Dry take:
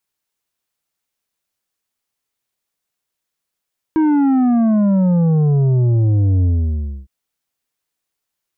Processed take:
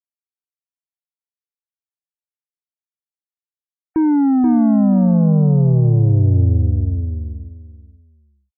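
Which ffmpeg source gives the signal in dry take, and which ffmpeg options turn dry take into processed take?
-f lavfi -i "aevalsrc='0.251*clip((3.11-t)/0.63,0,1)*tanh(2.37*sin(2*PI*320*3.11/log(65/320)*(exp(log(65/320)*t/3.11)-1)))/tanh(2.37)':duration=3.11:sample_rate=44100"
-af "afftfilt=real='re*gte(hypot(re,im),0.0141)':imag='im*gte(hypot(re,im),0.0141)':win_size=1024:overlap=0.75,equalizer=frequency=1500:width=0.84:gain=-6,aecho=1:1:481|962|1443:0.531|0.106|0.0212"

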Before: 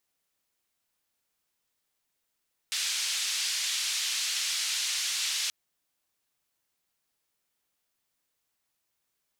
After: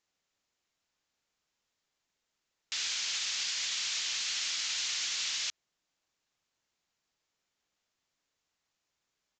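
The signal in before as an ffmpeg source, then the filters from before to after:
-f lavfi -i "anoisesrc=color=white:duration=2.78:sample_rate=44100:seed=1,highpass=frequency=2800,lowpass=frequency=5800,volume=-17.3dB"
-af "alimiter=level_in=0.5dB:limit=-24dB:level=0:latency=1:release=20,volume=-0.5dB,aresample=16000,acrusher=bits=5:mode=log:mix=0:aa=0.000001,aresample=44100"

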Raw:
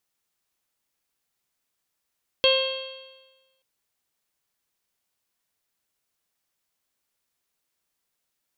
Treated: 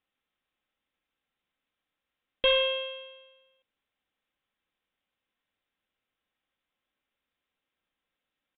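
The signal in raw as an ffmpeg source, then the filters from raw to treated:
-f lavfi -i "aevalsrc='0.133*pow(10,-3*t/1.21)*sin(2*PI*527.32*t)+0.0335*pow(10,-3*t/1.21)*sin(2*PI*1056.53*t)+0.0178*pow(10,-3*t/1.21)*sin(2*PI*1589.51*t)+0.0168*pow(10,-3*t/1.21)*sin(2*PI*2128.14*t)+0.0668*pow(10,-3*t/1.21)*sin(2*PI*2674.23*t)+0.126*pow(10,-3*t/1.21)*sin(2*PI*3229.58*t)+0.0178*pow(10,-3*t/1.21)*sin(2*PI*3795.91*t)+0.0531*pow(10,-3*t/1.21)*sin(2*PI*4374.9*t)':duration=1.18:sample_rate=44100"
-af "equalizer=frequency=880:width_type=o:width=0.77:gain=-2.5,aecho=1:1:3.8:0.33,aresample=8000,asoftclip=type=tanh:threshold=-17.5dB,aresample=44100"

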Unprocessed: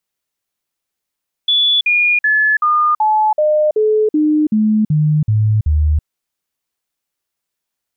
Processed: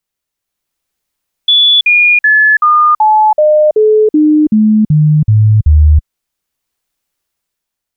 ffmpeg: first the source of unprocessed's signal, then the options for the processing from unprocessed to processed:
-f lavfi -i "aevalsrc='0.316*clip(min(mod(t,0.38),0.33-mod(t,0.38))/0.005,0,1)*sin(2*PI*3440*pow(2,-floor(t/0.38)/2)*mod(t,0.38))':duration=4.56:sample_rate=44100"
-af "lowshelf=frequency=73:gain=9.5,dynaudnorm=framelen=140:gausssize=9:maxgain=6.5dB"

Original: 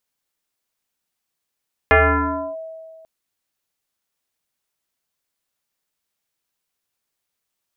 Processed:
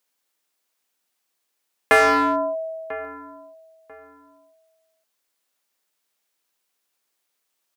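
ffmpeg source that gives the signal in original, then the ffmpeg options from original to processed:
-f lavfi -i "aevalsrc='0.398*pow(10,-3*t/1.96)*sin(2*PI*646*t+4.3*clip(1-t/0.65,0,1)*sin(2*PI*0.56*646*t))':duration=1.14:sample_rate=44100"
-filter_complex "[0:a]highpass=260,asplit=2[link_01][link_02];[link_02]adelay=993,lowpass=frequency=1500:poles=1,volume=-20dB,asplit=2[link_03][link_04];[link_04]adelay=993,lowpass=frequency=1500:poles=1,volume=0.27[link_05];[link_01][link_03][link_05]amix=inputs=3:normalize=0,asplit=2[link_06][link_07];[link_07]aeval=exprs='0.1*(abs(mod(val(0)/0.1+3,4)-2)-1)':channel_layout=same,volume=-4.5dB[link_08];[link_06][link_08]amix=inputs=2:normalize=0"

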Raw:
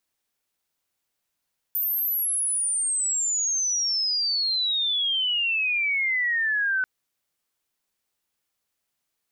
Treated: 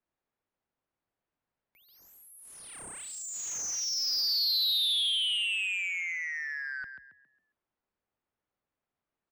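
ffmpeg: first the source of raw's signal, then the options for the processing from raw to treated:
-f lavfi -i "aevalsrc='pow(10,(-22.5+1.5*t/5.09)/20)*sin(2*PI*14000*5.09/log(1500/14000)*(exp(log(1500/14000)*t/5.09)-1))':duration=5.09:sample_rate=44100"
-filter_complex "[0:a]acrossover=split=210|3000[link_01][link_02][link_03];[link_02]acompressor=threshold=-38dB:ratio=10[link_04];[link_01][link_04][link_03]amix=inputs=3:normalize=0,asplit=6[link_05][link_06][link_07][link_08][link_09][link_10];[link_06]adelay=136,afreqshift=39,volume=-6dB[link_11];[link_07]adelay=272,afreqshift=78,volume=-14dB[link_12];[link_08]adelay=408,afreqshift=117,volume=-21.9dB[link_13];[link_09]adelay=544,afreqshift=156,volume=-29.9dB[link_14];[link_10]adelay=680,afreqshift=195,volume=-37.8dB[link_15];[link_05][link_11][link_12][link_13][link_14][link_15]amix=inputs=6:normalize=0,adynamicsmooth=sensitivity=2:basefreq=1600"

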